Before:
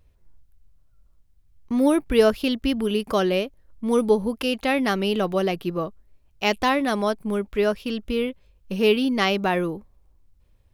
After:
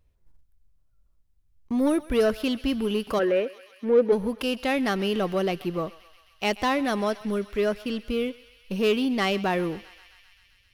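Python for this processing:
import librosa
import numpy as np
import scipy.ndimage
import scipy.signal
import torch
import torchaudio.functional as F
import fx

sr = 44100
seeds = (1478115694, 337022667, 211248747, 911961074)

p1 = fx.leveller(x, sr, passes=1)
p2 = fx.cabinet(p1, sr, low_hz=170.0, low_slope=24, high_hz=2500.0, hz=(190.0, 500.0, 740.0, 1100.0, 1800.0), db=(-6, 10, -5, -7, 8), at=(3.18, 4.11), fade=0.02)
p3 = fx.echo_thinned(p2, sr, ms=131, feedback_pct=82, hz=940.0, wet_db=-18.0)
p4 = 10.0 ** (-17.5 / 20.0) * np.tanh(p3 / 10.0 ** (-17.5 / 20.0))
p5 = p3 + (p4 * librosa.db_to_amplitude(-5.0))
y = p5 * librosa.db_to_amplitude(-9.0)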